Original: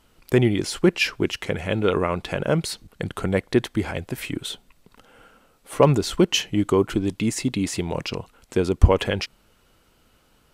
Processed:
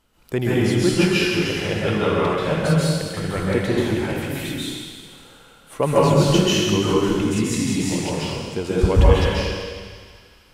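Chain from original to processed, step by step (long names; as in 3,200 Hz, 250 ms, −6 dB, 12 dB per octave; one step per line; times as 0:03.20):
delay with a high-pass on its return 78 ms, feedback 82%, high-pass 1,600 Hz, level −14 dB
dense smooth reverb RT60 1.7 s, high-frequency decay 0.9×, pre-delay 120 ms, DRR −8 dB
level −5.5 dB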